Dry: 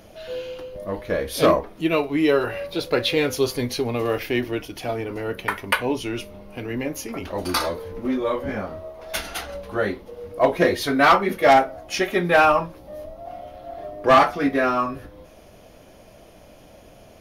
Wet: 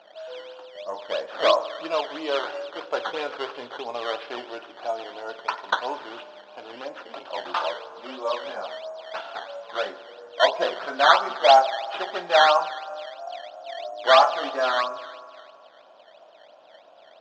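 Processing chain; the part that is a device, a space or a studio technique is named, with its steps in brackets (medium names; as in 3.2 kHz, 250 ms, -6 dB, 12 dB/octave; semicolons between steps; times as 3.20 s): high-order bell 780 Hz +8.5 dB 1.1 oct; spring tank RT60 2.2 s, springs 50 ms, chirp 75 ms, DRR 12.5 dB; circuit-bent sampling toy (decimation with a swept rate 12×, swing 100% 3 Hz; cabinet simulation 540–4300 Hz, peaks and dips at 1.4 kHz +6 dB, 2.1 kHz -8 dB, 3.2 kHz +4 dB); trim -6.5 dB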